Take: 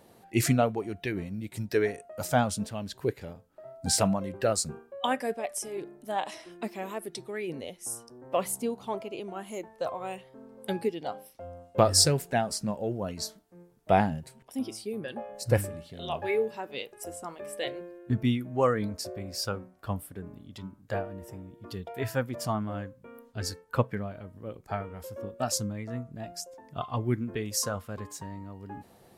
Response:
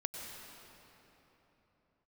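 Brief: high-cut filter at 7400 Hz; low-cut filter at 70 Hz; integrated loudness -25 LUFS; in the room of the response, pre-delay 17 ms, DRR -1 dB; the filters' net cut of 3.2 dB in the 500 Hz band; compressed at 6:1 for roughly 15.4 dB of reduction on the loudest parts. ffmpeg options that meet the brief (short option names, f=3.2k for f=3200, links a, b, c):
-filter_complex "[0:a]highpass=70,lowpass=7.4k,equalizer=f=500:t=o:g=-4,acompressor=threshold=-37dB:ratio=6,asplit=2[a][b];[1:a]atrim=start_sample=2205,adelay=17[c];[b][c]afir=irnorm=-1:irlink=0,volume=0dB[d];[a][d]amix=inputs=2:normalize=0,volume=14dB"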